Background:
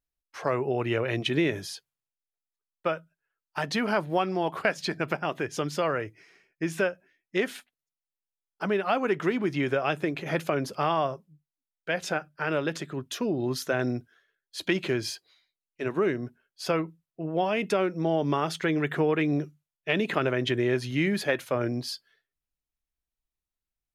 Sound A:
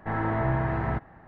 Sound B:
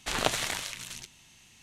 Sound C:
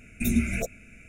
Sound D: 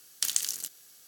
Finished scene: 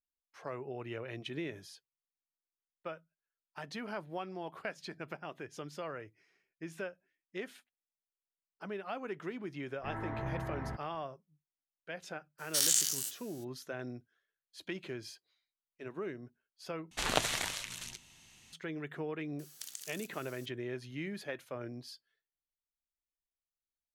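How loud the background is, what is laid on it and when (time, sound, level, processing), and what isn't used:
background -14.5 dB
9.78 s: add A -12.5 dB
12.38 s: add D -7 dB, fades 0.02 s + every event in the spectrogram widened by 120 ms
16.91 s: replace with B -3 dB
19.39 s: add D -2.5 dB + compression 2.5:1, threshold -46 dBFS
not used: C

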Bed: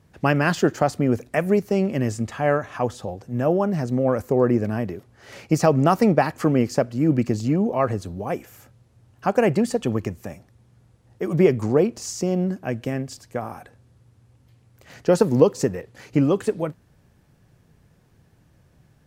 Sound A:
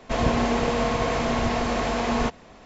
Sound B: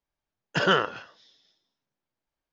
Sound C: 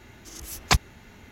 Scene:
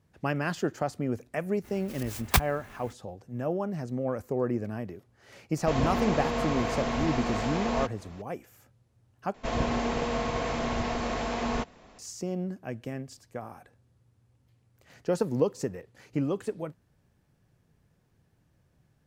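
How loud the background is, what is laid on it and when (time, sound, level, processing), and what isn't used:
bed -10 dB
1.63 s: add C -2.5 dB, fades 0.02 s + sampling jitter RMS 0.043 ms
5.57 s: add A -6 dB + upward compressor, threshold -38 dBFS
9.34 s: replace with A -6 dB
not used: B

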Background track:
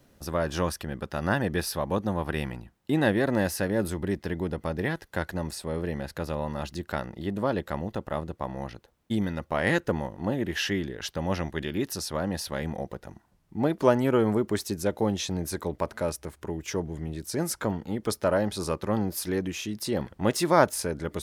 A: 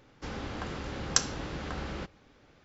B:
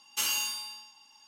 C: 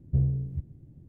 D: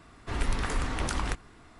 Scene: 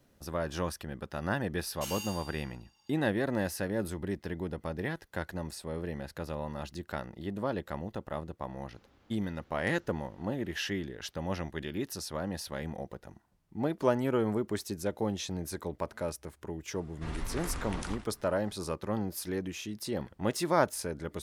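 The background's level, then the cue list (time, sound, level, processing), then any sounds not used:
background track -6 dB
1.64 s: add B -11 dB
8.51 s: add A -14.5 dB + compression 2.5:1, threshold -53 dBFS
16.74 s: add D -7.5 dB + endings held to a fixed fall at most 130 dB/s
not used: C

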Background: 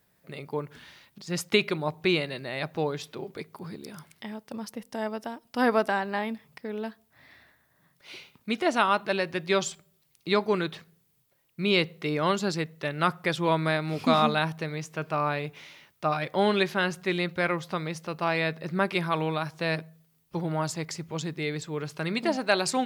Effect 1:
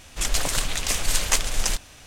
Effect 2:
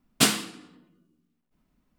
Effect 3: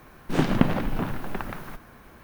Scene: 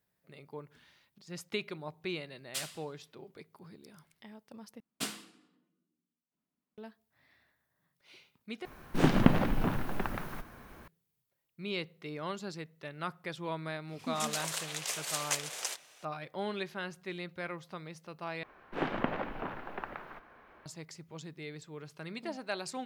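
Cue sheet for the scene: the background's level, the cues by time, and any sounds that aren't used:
background -13 dB
2.34 s: add 2 -15 dB + amplifier tone stack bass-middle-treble 10-0-10
4.80 s: replace with 2 -16.5 dB + high-pass 150 Hz
8.65 s: replace with 3 -2.5 dB
13.99 s: add 1 -10.5 dB + high-pass 410 Hz 24 dB/octave
18.43 s: replace with 3 -5 dB + three-band isolator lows -14 dB, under 350 Hz, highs -22 dB, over 3.3 kHz

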